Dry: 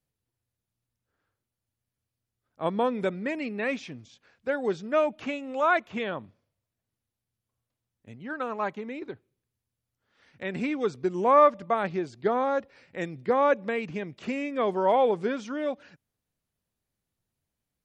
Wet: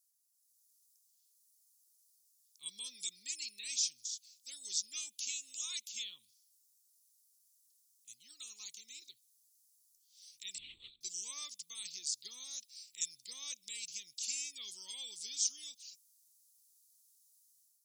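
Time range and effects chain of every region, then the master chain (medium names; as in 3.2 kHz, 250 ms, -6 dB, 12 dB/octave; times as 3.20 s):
10.58–11.01 s: hard clipper -30.5 dBFS + LPC vocoder at 8 kHz whisper
whole clip: inverse Chebyshev high-pass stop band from 1.7 kHz, stop band 60 dB; level rider gain up to 8 dB; trim +13.5 dB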